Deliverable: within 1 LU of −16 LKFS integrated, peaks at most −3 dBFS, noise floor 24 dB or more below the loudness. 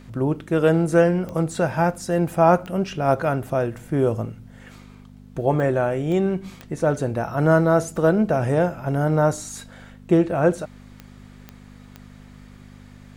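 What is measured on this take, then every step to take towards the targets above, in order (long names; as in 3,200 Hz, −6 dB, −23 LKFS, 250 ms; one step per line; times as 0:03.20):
number of clicks 8; mains hum 50 Hz; hum harmonics up to 250 Hz; level of the hum −44 dBFS; integrated loudness −21.5 LKFS; sample peak −4.0 dBFS; target loudness −16.0 LKFS
→ click removal
hum removal 50 Hz, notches 5
level +5.5 dB
brickwall limiter −3 dBFS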